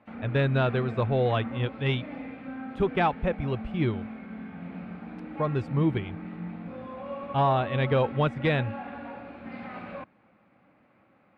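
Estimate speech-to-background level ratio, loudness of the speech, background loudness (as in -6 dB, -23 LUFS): 11.0 dB, -27.5 LUFS, -38.5 LUFS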